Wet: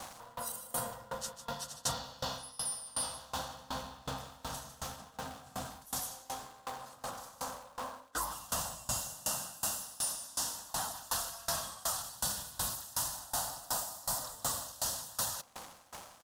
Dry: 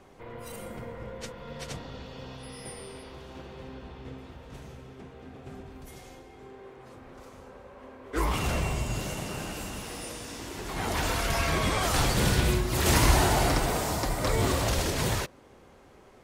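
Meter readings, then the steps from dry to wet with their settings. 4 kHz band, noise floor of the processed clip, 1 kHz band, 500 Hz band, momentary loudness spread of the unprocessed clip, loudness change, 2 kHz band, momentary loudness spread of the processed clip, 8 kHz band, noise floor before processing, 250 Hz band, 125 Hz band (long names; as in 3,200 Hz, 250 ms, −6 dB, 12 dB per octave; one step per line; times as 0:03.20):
−6.0 dB, −58 dBFS, −7.5 dB, −13.0 dB, 22 LU, −9.5 dB, −13.5 dB, 9 LU, 0.0 dB, −54 dBFS, −17.5 dB, −19.5 dB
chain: single-tap delay 151 ms −3 dB
in parallel at −0.5 dB: speech leveller within 5 dB
on the sum: RIAA equalisation recording
brickwall limiter −10.5 dBFS, peak gain reduction 11 dB
phaser with its sweep stopped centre 930 Hz, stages 4
surface crackle 410 per second −38 dBFS
high-shelf EQ 10,000 Hz −7 dB
reversed playback
downward compressor 6 to 1, threshold −35 dBFS, peak gain reduction 13.5 dB
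reversed playback
soft clipping −25.5 dBFS, distortion −27 dB
tremolo with a ramp in dB decaying 2.7 Hz, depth 24 dB
level +7 dB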